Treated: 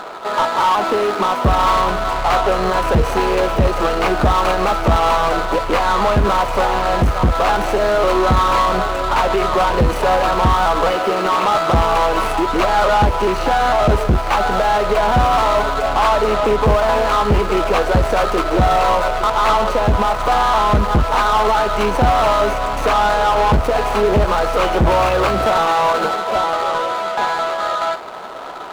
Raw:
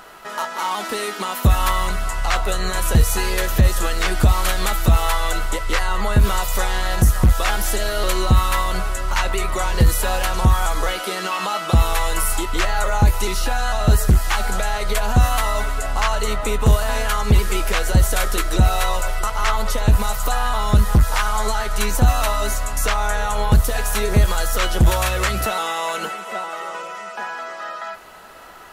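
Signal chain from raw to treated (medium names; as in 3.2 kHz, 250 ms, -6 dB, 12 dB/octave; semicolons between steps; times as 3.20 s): median filter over 25 samples; overdrive pedal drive 25 dB, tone 2.9 kHz, clips at -4.5 dBFS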